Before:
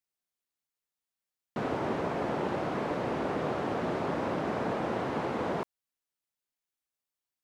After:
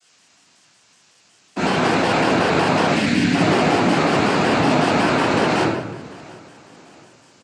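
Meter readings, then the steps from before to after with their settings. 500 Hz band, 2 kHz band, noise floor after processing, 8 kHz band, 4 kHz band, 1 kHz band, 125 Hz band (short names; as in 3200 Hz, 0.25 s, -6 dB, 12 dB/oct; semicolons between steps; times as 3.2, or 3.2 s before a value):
+12.0 dB, +18.5 dB, -56 dBFS, n/a, +22.5 dB, +14.5 dB, +15.0 dB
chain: rattling part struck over -36 dBFS, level -23 dBFS; low-pass opened by the level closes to 970 Hz, open at -29.5 dBFS; HPF 140 Hz; spectral delete 2.88–3.34, 290–1700 Hz; sample leveller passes 5; limiter -23 dBFS, peak gain reduction 6.5 dB; requantised 10-bit, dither triangular; noise vocoder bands 8; feedback echo 0.681 s, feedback 44%, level -22 dB; shoebox room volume 290 m³, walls mixed, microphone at 3.1 m; shaped vibrato square 5.4 Hz, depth 100 cents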